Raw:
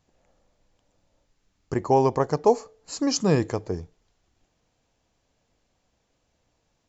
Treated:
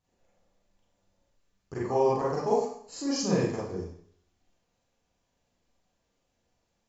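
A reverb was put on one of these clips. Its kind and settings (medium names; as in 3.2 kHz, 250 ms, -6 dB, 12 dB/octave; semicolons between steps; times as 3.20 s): Schroeder reverb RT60 0.58 s, combs from 32 ms, DRR -7 dB; trim -12.5 dB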